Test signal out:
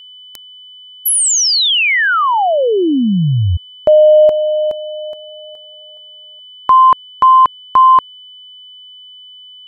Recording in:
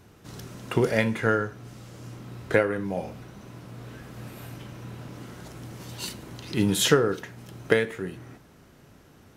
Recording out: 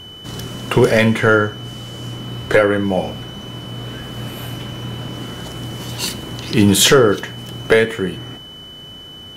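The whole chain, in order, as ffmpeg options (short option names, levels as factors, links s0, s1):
-af "aeval=exprs='val(0)+0.00447*sin(2*PI*3000*n/s)':c=same,apsyclip=5.96,volume=0.668"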